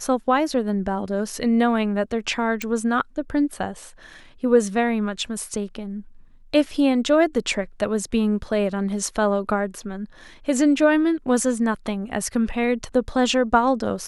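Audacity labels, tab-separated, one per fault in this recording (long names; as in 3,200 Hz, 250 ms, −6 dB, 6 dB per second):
2.620000	2.620000	click −12 dBFS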